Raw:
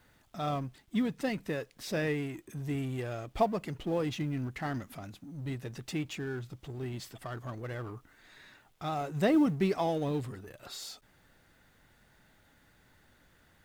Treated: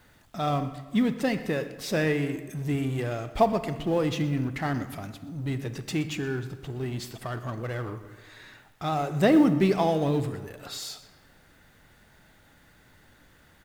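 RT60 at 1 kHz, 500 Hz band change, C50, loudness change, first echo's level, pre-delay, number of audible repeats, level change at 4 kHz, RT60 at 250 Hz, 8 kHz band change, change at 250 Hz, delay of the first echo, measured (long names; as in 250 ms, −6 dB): 1.4 s, +6.5 dB, 11.0 dB, +6.5 dB, −18.5 dB, 30 ms, 1, +6.0 dB, 1.4 s, +6.0 dB, +6.5 dB, 122 ms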